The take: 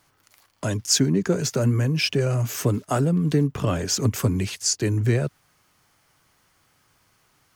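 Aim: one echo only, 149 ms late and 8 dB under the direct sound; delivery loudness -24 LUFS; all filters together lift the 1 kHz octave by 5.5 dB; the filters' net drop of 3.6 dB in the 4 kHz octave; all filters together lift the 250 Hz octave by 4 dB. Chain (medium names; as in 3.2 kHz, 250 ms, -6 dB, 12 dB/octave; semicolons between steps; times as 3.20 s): peaking EQ 250 Hz +5 dB; peaking EQ 1 kHz +7.5 dB; peaking EQ 4 kHz -5.5 dB; delay 149 ms -8 dB; trim -3.5 dB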